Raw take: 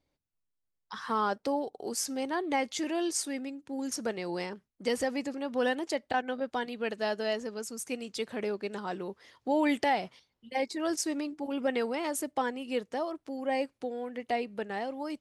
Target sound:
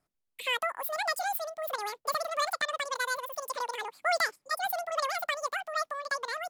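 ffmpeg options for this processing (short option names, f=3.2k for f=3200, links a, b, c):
-af "asetrate=103194,aresample=44100"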